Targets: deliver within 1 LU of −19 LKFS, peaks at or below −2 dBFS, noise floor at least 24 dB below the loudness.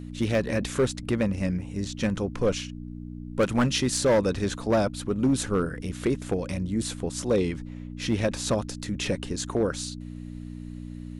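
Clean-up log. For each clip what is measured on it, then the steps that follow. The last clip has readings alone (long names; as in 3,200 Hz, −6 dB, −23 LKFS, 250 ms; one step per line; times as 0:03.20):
share of clipped samples 1.1%; peaks flattened at −16.5 dBFS; mains hum 60 Hz; hum harmonics up to 300 Hz; level of the hum −36 dBFS; integrated loudness −27.0 LKFS; sample peak −16.5 dBFS; target loudness −19.0 LKFS
→ clipped peaks rebuilt −16.5 dBFS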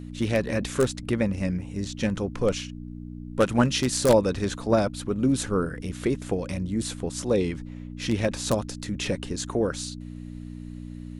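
share of clipped samples 0.0%; mains hum 60 Hz; hum harmonics up to 300 Hz; level of the hum −35 dBFS
→ hum removal 60 Hz, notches 5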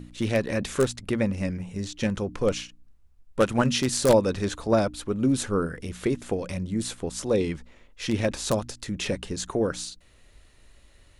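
mains hum none found; integrated loudness −27.0 LKFS; sample peak −7.5 dBFS; target loudness −19.0 LKFS
→ level +8 dB
brickwall limiter −2 dBFS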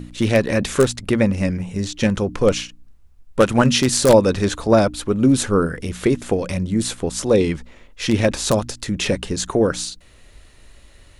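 integrated loudness −19.0 LKFS; sample peak −2.0 dBFS; background noise floor −48 dBFS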